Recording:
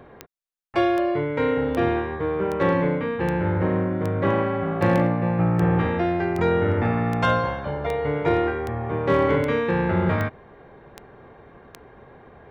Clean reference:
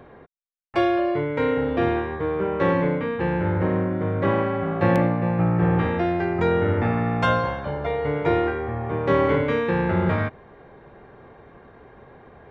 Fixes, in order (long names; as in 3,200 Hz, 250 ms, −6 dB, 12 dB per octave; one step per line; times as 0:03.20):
clipped peaks rebuilt −11 dBFS
click removal